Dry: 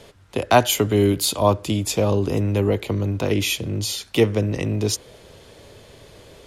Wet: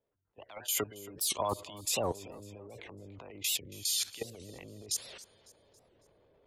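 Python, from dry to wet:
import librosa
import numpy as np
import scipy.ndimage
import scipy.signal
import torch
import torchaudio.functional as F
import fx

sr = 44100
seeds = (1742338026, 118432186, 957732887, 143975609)

y = fx.spec_gate(x, sr, threshold_db=-25, keep='strong')
y = librosa.effects.preemphasis(y, coef=0.97, zi=[0.0])
y = fx.notch(y, sr, hz=5800.0, q=17.0)
y = fx.env_lowpass(y, sr, base_hz=540.0, full_db=-28.5)
y = fx.high_shelf(y, sr, hz=11000.0, db=-3.0)
y = fx.rider(y, sr, range_db=4, speed_s=0.5)
y = fx.transient(y, sr, attack_db=-7, sustain_db=11)
y = fx.level_steps(y, sr, step_db=18)
y = fx.echo_feedback(y, sr, ms=276, feedback_pct=46, wet_db=-19.5)
y = fx.record_warp(y, sr, rpm=78.0, depth_cents=250.0)
y = y * 10.0 ** (5.0 / 20.0)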